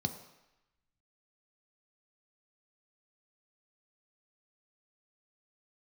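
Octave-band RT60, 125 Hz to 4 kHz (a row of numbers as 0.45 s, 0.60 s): 0.75 s, 0.75 s, 0.85 s, 1.0 s, 1.1 s, 0.95 s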